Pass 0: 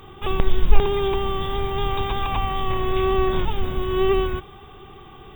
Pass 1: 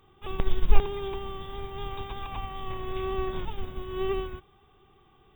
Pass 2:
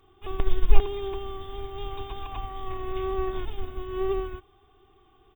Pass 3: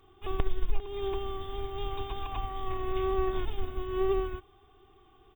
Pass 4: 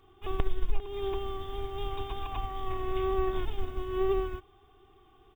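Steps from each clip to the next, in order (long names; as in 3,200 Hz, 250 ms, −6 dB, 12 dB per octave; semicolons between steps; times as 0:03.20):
expander for the loud parts 1.5 to 1, over −32 dBFS; level −3 dB
comb filter 2.8 ms, depth 65%; level −2 dB
downward compressor 12 to 1, threshold −20 dBFS, peak gain reduction 14.5 dB
running median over 3 samples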